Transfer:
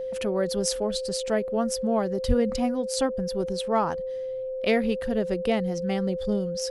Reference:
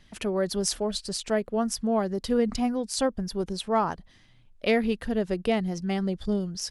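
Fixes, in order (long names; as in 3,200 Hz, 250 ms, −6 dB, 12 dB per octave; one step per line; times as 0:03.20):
notch filter 520 Hz, Q 30
high-pass at the plosives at 0:02.27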